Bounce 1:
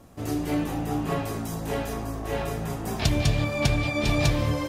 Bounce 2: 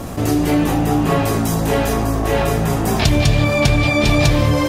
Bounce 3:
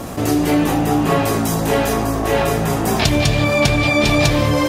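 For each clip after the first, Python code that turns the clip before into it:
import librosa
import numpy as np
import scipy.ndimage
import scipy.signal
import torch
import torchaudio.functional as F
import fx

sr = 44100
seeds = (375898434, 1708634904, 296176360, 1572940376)

y1 = fx.env_flatten(x, sr, amount_pct=50)
y1 = F.gain(torch.from_numpy(y1), 7.0).numpy()
y2 = fx.low_shelf(y1, sr, hz=120.0, db=-8.0)
y2 = F.gain(torch.from_numpy(y2), 1.5).numpy()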